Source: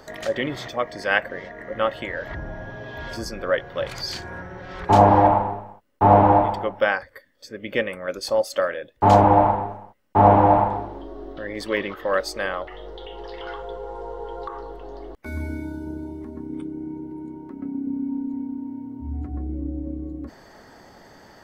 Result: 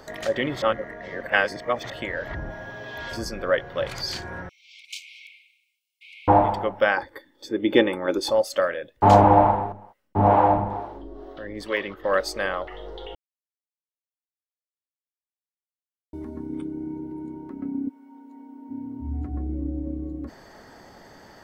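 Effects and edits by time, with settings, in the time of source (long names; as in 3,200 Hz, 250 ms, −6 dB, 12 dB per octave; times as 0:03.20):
0:00.62–0:01.90: reverse
0:02.50–0:03.12: spectral tilt +2 dB per octave
0:04.49–0:06.28: linear-phase brick-wall high-pass 2,100 Hz
0:06.97–0:08.31: hollow resonant body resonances 330/860/3,500 Hz, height 17 dB, ringing for 35 ms
0:09.72–0:12.04: two-band tremolo in antiphase 2.2 Hz, crossover 400 Hz
0:13.15–0:16.13: silence
0:17.88–0:18.69: high-pass filter 1,200 Hz → 460 Hz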